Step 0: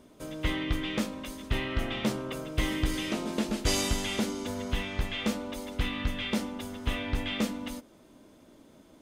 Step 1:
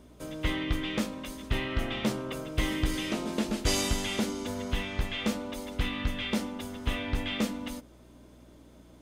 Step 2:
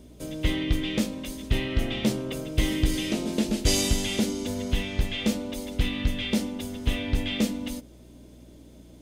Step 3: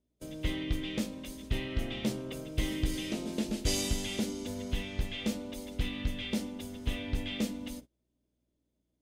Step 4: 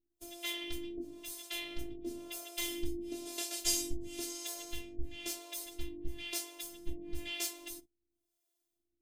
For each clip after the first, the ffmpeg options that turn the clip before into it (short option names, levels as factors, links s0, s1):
-af "aeval=exprs='val(0)+0.00158*(sin(2*PI*60*n/s)+sin(2*PI*2*60*n/s)/2+sin(2*PI*3*60*n/s)/3+sin(2*PI*4*60*n/s)/4+sin(2*PI*5*60*n/s)/5)':c=same"
-af "equalizer=f=1200:t=o:w=1.4:g=-11,volume=1.88"
-af "agate=range=0.0631:threshold=0.0112:ratio=16:detection=peak,volume=0.422"
-filter_complex "[0:a]afftfilt=real='hypot(re,im)*cos(PI*b)':imag='0':win_size=512:overlap=0.75,crystalizer=i=3:c=0,acrossover=split=450[s0][s1];[s0]aeval=exprs='val(0)*(1-1/2+1/2*cos(2*PI*1*n/s))':c=same[s2];[s1]aeval=exprs='val(0)*(1-1/2-1/2*cos(2*PI*1*n/s))':c=same[s3];[s2][s3]amix=inputs=2:normalize=0,volume=1.12"